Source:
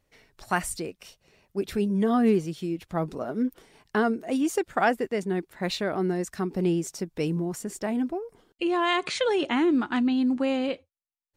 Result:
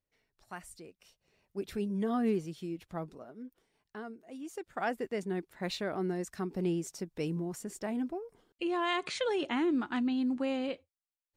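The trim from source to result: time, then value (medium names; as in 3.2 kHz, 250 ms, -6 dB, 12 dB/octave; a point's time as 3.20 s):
0.66 s -18.5 dB
1.59 s -8.5 dB
2.90 s -8.5 dB
3.36 s -19.5 dB
4.34 s -19.5 dB
5.07 s -7 dB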